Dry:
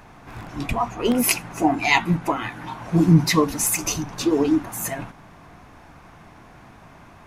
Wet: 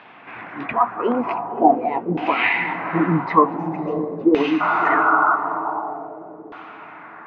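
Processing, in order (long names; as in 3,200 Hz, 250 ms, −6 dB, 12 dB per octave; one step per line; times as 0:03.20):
sound drawn into the spectrogram noise, 0:04.60–0:05.36, 600–1,500 Hz −24 dBFS
high-pass filter 230 Hz 12 dB per octave
spectral tilt +2 dB per octave
on a send: feedback delay with all-pass diffusion 590 ms, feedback 44%, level −8.5 dB
on the sum: auto-filter low-pass saw down 0.46 Hz 430–3,300 Hz
high-frequency loss of the air 310 metres
level +4 dB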